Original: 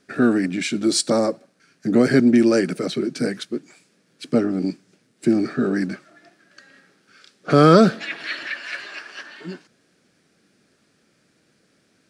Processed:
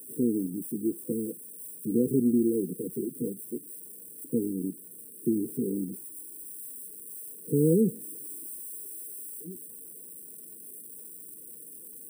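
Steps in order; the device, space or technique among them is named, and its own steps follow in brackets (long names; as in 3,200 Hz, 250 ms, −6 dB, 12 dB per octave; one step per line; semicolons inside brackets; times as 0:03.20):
low-pass filter 1,400 Hz 24 dB per octave
parametric band 2,000 Hz +6.5 dB 0.42 octaves
budget class-D amplifier (gap after every zero crossing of 0.095 ms; spike at every zero crossing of −16 dBFS)
brick-wall band-stop 510–7,800 Hz
level −9 dB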